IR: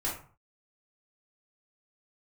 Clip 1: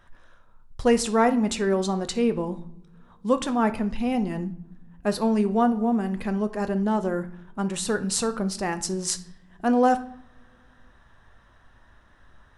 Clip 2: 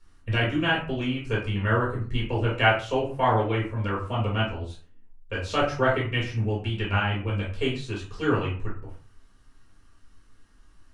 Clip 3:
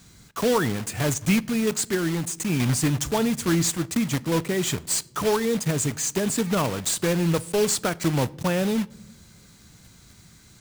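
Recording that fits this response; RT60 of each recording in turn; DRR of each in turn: 2; not exponential, 0.45 s, not exponential; 9.0, -6.0, 19.0 dB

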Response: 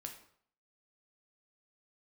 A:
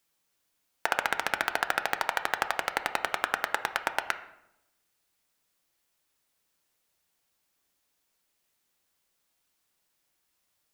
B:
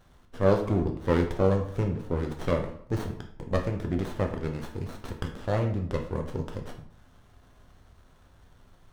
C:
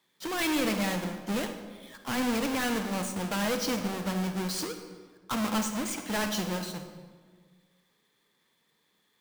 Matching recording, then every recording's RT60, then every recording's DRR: B; 0.85, 0.60, 1.6 s; 8.5, 3.0, 6.5 dB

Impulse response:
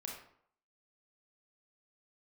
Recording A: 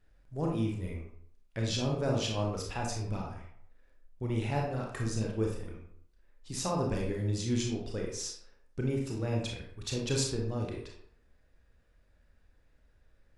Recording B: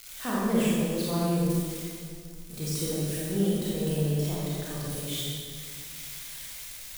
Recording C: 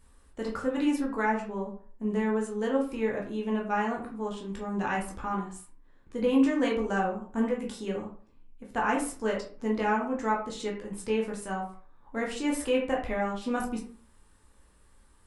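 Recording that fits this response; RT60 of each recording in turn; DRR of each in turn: A; 0.65, 2.0, 0.45 s; -1.0, -7.5, -2.5 dB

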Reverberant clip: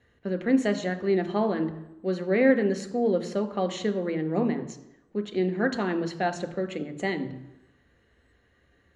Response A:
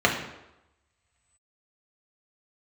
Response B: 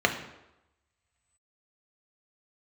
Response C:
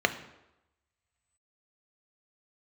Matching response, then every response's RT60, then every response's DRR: C; 0.95, 0.95, 0.95 s; -1.5, 3.0, 7.5 dB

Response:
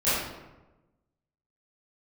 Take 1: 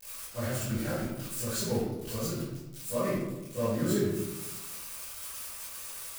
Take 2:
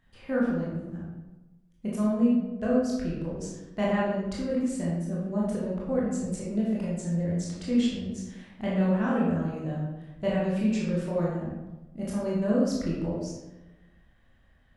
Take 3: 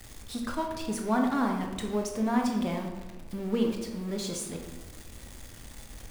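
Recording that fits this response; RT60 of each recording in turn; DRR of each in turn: 1; 1.1, 1.1, 1.1 s; -15.5, -6.5, 1.5 dB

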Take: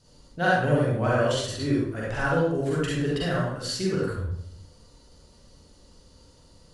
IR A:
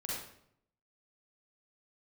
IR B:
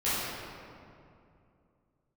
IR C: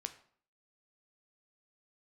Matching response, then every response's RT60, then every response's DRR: A; 0.70, 2.5, 0.55 s; -6.0, -13.5, 8.0 dB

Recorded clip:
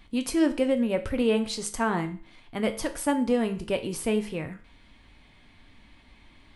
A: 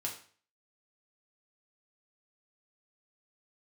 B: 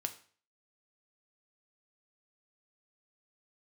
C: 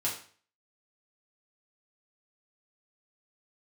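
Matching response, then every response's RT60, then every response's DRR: B; 0.45, 0.45, 0.45 s; -1.5, 6.5, -5.5 dB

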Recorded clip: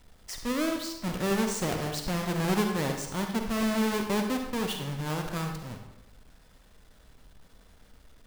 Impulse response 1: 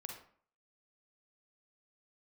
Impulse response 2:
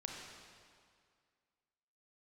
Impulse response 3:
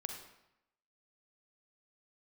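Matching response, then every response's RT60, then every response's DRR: 3; 0.50, 2.1, 0.85 s; 1.5, -0.5, 3.5 dB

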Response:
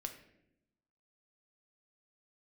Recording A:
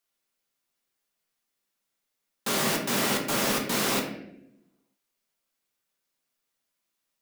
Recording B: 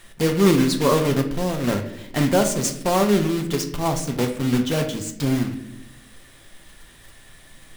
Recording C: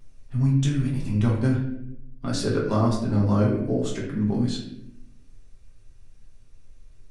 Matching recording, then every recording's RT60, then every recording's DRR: B; 0.80, 0.80, 0.80 s; 0.5, 5.0, -4.5 dB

